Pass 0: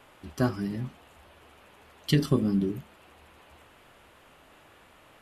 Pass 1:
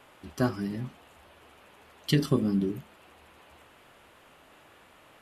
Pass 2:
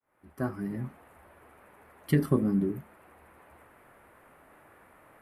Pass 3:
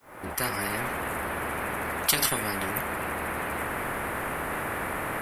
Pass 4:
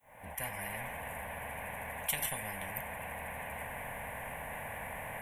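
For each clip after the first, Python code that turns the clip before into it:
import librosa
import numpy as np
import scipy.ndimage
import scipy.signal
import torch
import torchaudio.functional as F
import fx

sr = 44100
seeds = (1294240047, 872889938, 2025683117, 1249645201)

y1 = fx.low_shelf(x, sr, hz=79.0, db=-7.0)
y2 = fx.fade_in_head(y1, sr, length_s=0.81)
y2 = fx.band_shelf(y2, sr, hz=4500.0, db=-15.0, octaves=1.7)
y3 = fx.spectral_comp(y2, sr, ratio=10.0)
y3 = F.gain(torch.from_numpy(y3), 2.5).numpy()
y4 = fx.fixed_phaser(y3, sr, hz=1300.0, stages=6)
y4 = F.gain(torch.from_numpy(y4), -7.5).numpy()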